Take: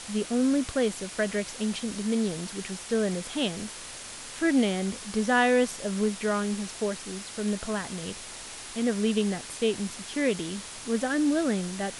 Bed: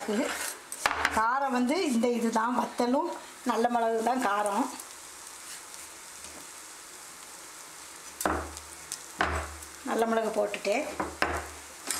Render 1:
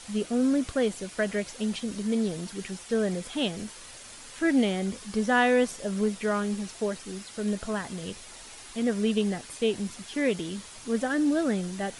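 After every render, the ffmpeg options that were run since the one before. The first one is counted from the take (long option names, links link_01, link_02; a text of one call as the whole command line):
ffmpeg -i in.wav -af "afftdn=noise_reduction=7:noise_floor=-42" out.wav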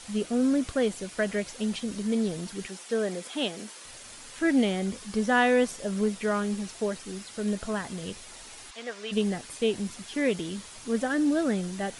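ffmpeg -i in.wav -filter_complex "[0:a]asettb=1/sr,asplit=3[link_01][link_02][link_03];[link_01]atrim=end=2.674[link_04];[link_02]atrim=start=2.67:end=3.85,asetpts=PTS-STARTPTS,afade=type=in:duration=0.004:curve=qsin,afade=type=out:start_time=1.176:duration=0.004:curve=qsin,highpass=260[link_05];[link_03]atrim=start=3.846[link_06];[link_04][link_05]acrossfade=duration=0.004:curve1=hsin:curve2=qsin[link_07];[link_07][link_06]acrossfade=duration=0.004:curve1=qsin:curve2=hsin,asplit=3[link_08][link_09][link_10];[link_08]afade=type=out:start_time=8.7:duration=0.02[link_11];[link_09]highpass=740,lowpass=6200,afade=type=in:start_time=8.7:duration=0.02,afade=type=out:start_time=9.11:duration=0.02[link_12];[link_10]afade=type=in:start_time=9.11:duration=0.02[link_13];[link_11][link_12][link_13]amix=inputs=3:normalize=0" out.wav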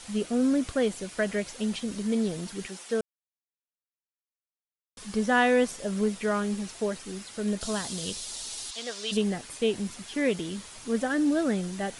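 ffmpeg -i in.wav -filter_complex "[0:a]asettb=1/sr,asplit=3[link_01][link_02][link_03];[link_01]atrim=end=7.614[link_04];[link_02]atrim=start=7.61:end=9.17,asetpts=PTS-STARTPTS,afade=type=in:duration=0.004:curve=qsin,afade=type=out:start_time=1.556:duration=0.004:curve=qsin,highshelf=frequency=2900:width_type=q:width=1.5:gain=8.5[link_05];[link_03]atrim=start=9.166[link_06];[link_04][link_05]acrossfade=duration=0.004:curve1=hsin:curve2=qsin[link_07];[link_07][link_06]acrossfade=duration=0.004:curve1=qsin:curve2=hsin,asplit=3[link_08][link_09][link_10];[link_08]atrim=end=3.01,asetpts=PTS-STARTPTS,afade=type=out:start_time=3.006:duration=0.004:curve=hsin[link_11];[link_09]atrim=start=3.01:end=4.97,asetpts=PTS-STARTPTS,volume=0[link_12];[link_10]atrim=start=4.97,asetpts=PTS-STARTPTS,afade=type=in:duration=0.004:curve=hsin[link_13];[link_11][link_12][link_13]concat=n=3:v=0:a=1" out.wav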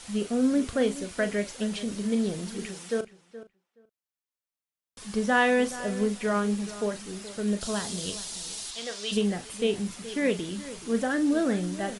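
ffmpeg -i in.wav -filter_complex "[0:a]asplit=2[link_01][link_02];[link_02]adelay=39,volume=-10.5dB[link_03];[link_01][link_03]amix=inputs=2:normalize=0,asplit=2[link_04][link_05];[link_05]adelay=423,lowpass=frequency=2600:poles=1,volume=-15dB,asplit=2[link_06][link_07];[link_07]adelay=423,lowpass=frequency=2600:poles=1,volume=0.15[link_08];[link_04][link_06][link_08]amix=inputs=3:normalize=0" out.wav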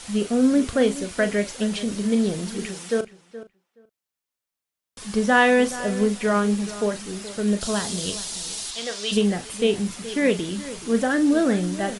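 ffmpeg -i in.wav -af "volume=5.5dB" out.wav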